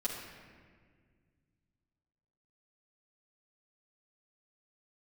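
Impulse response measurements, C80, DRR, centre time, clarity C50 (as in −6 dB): 4.0 dB, −7.5 dB, 67 ms, 2.5 dB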